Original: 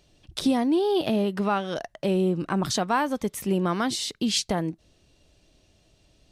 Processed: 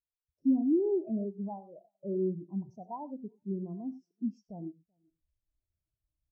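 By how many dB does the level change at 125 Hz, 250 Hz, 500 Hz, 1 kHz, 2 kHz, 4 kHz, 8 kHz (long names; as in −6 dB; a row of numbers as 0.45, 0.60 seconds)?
−11.0 dB, −6.5 dB, −8.5 dB, −18.0 dB, below −40 dB, below −40 dB, below −40 dB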